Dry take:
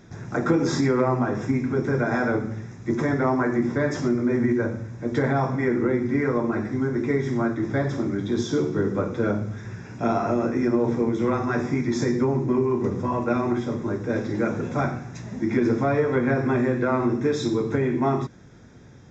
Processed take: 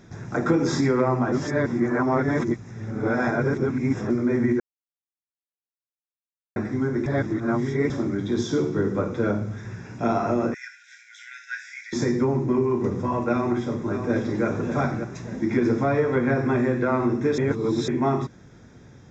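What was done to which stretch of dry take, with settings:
0:01.32–0:04.10: reverse
0:04.60–0:06.56: silence
0:07.06–0:07.90: reverse
0:10.54–0:11.93: linear-phase brick-wall high-pass 1,400 Hz
0:13.32–0:14.45: delay throw 590 ms, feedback 40%, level −8 dB
0:17.38–0:17.88: reverse

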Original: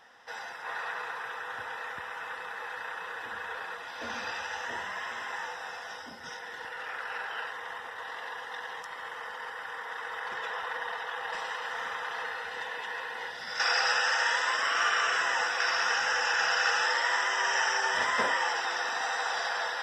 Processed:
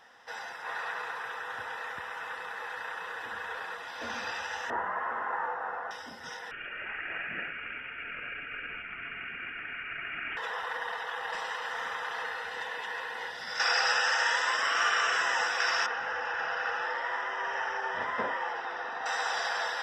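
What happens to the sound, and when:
0:04.70–0:05.91: drawn EQ curve 130 Hz 0 dB, 280 Hz +5 dB, 1,300 Hz +7 dB, 4,500 Hz −26 dB
0:06.51–0:10.37: voice inversion scrambler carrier 3,300 Hz
0:15.86–0:19.06: head-to-tape spacing loss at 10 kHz 35 dB

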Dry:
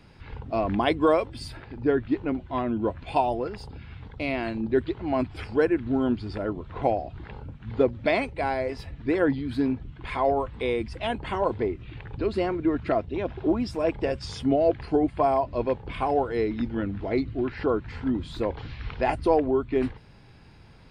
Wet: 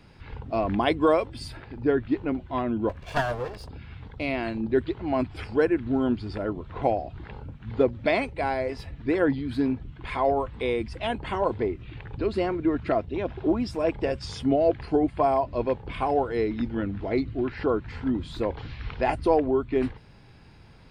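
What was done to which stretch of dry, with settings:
0:02.89–0:03.69: lower of the sound and its delayed copy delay 1.8 ms

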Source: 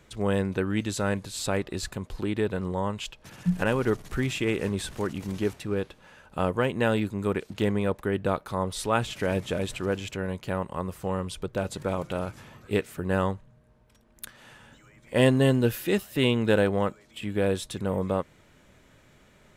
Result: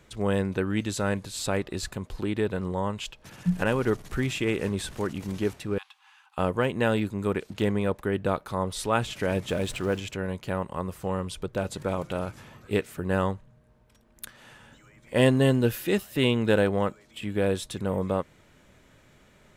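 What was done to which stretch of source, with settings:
0:05.78–0:06.38: Chebyshev high-pass with heavy ripple 770 Hz, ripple 6 dB
0:09.48–0:10.00: mu-law and A-law mismatch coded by mu

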